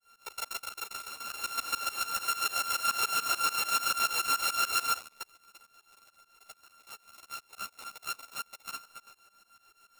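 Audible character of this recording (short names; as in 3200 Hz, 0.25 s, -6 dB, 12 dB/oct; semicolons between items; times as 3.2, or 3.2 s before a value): a buzz of ramps at a fixed pitch in blocks of 32 samples; tremolo saw up 6.9 Hz, depth 100%; a shimmering, thickened sound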